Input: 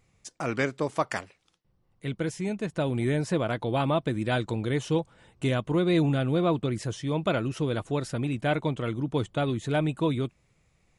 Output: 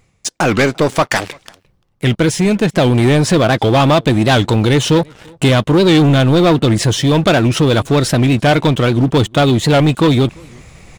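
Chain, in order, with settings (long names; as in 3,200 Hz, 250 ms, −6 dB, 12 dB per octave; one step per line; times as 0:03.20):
dynamic equaliser 3,700 Hz, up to +5 dB, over −53 dBFS, Q 1.8
in parallel at −1 dB: downward compressor, threshold −31 dBFS, peak gain reduction 11.5 dB
on the sum: leveller curve on the samples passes 3
reversed playback
upward compression, threshold −23 dBFS
reversed playback
slap from a distant wall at 59 metres, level −28 dB
wow of a warped record 78 rpm, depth 160 cents
level +4.5 dB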